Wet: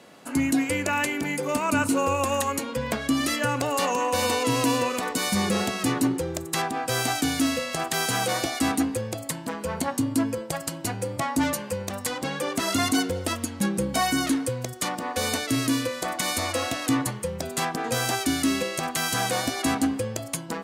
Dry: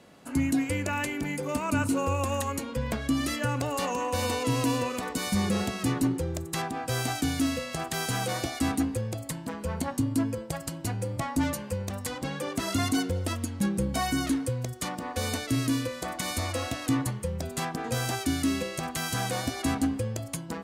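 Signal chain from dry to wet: high-pass 280 Hz 6 dB/octave; trim +6 dB

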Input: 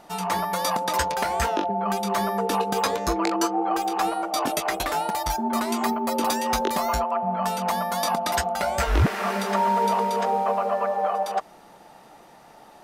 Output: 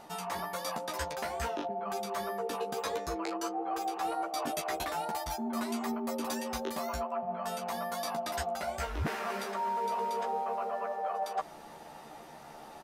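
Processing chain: reverse; compression 6:1, threshold -33 dBFS, peak gain reduction 16 dB; reverse; doubling 13 ms -4 dB; trim -1 dB

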